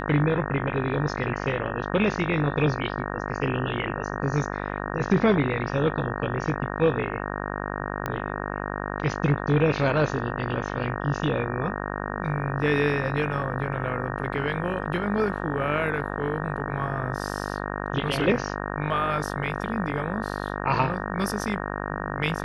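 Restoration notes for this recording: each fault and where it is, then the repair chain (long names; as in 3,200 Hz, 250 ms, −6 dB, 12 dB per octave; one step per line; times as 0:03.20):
mains buzz 50 Hz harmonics 37 −31 dBFS
0:08.06: click −14 dBFS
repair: click removal
hum removal 50 Hz, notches 37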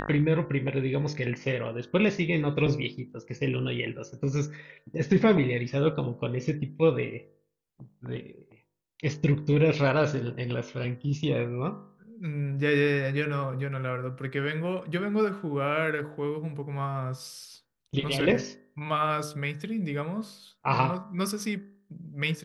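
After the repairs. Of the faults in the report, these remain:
none of them is left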